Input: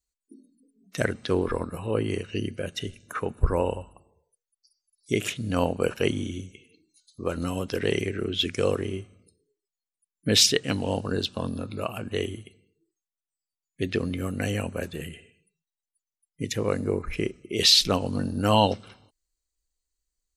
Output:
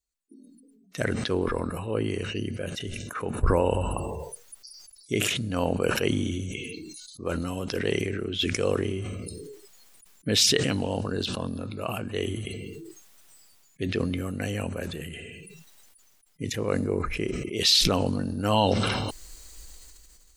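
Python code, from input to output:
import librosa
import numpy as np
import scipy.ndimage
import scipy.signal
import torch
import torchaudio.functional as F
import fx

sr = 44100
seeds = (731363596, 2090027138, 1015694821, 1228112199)

y = fx.sustainer(x, sr, db_per_s=22.0)
y = y * librosa.db_to_amplitude(-3.0)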